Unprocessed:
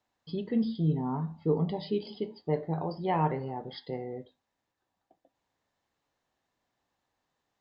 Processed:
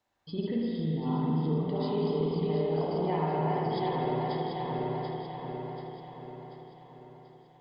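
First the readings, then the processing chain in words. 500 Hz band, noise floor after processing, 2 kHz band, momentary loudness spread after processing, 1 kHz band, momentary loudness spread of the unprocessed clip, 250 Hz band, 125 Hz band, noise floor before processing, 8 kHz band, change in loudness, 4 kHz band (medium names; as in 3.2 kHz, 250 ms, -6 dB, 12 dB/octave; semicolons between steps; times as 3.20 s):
+3.5 dB, -57 dBFS, +3.0 dB, 16 LU, +3.0 dB, 10 LU, +1.5 dB, +1.5 dB, -84 dBFS, no reading, +1.0 dB, +3.0 dB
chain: backward echo that repeats 368 ms, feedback 69%, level -4 dB; compression, threshold -31 dBFS, peak gain reduction 11 dB; spring tank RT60 2.9 s, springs 51/56 ms, chirp 30 ms, DRR -3.5 dB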